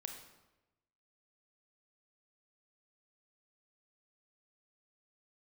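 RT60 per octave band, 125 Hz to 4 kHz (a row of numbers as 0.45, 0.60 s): 1.2, 1.1, 1.1, 0.95, 0.90, 0.75 s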